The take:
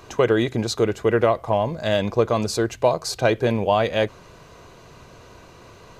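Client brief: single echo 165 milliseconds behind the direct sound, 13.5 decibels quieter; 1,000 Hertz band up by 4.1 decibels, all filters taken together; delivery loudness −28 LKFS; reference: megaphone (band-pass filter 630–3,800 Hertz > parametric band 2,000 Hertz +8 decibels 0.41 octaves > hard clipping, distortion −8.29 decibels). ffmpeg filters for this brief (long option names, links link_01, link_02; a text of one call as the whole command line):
ffmpeg -i in.wav -af "highpass=630,lowpass=3800,equalizer=frequency=1000:width_type=o:gain=6.5,equalizer=frequency=2000:width_type=o:width=0.41:gain=8,aecho=1:1:165:0.211,asoftclip=type=hard:threshold=-17.5dB,volume=-3dB" out.wav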